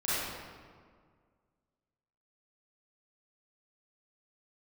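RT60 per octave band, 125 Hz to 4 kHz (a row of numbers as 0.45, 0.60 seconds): 2.1, 2.1, 1.9, 1.8, 1.4, 1.1 seconds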